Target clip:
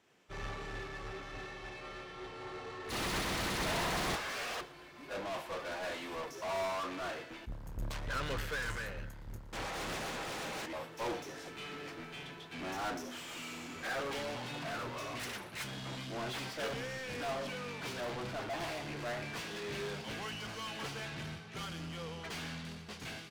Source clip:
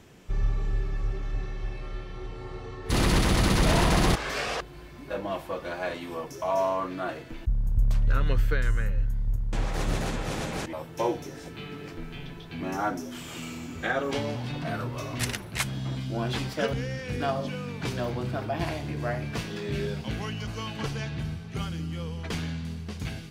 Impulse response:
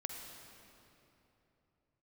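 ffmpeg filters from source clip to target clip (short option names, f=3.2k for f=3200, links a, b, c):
-filter_complex "[0:a]asplit=2[a][b];[b]highpass=f=720:p=1,volume=36dB,asoftclip=type=tanh:threshold=-12.5dB[c];[a][c]amix=inputs=2:normalize=0,lowpass=f=5k:p=1,volume=-6dB,agate=range=-33dB:threshold=-12dB:ratio=3:detection=peak,asplit=2[d][e];[e]adelay=116.6,volume=-18dB,highshelf=f=4k:g=-2.62[f];[d][f]amix=inputs=2:normalize=0,volume=-8.5dB"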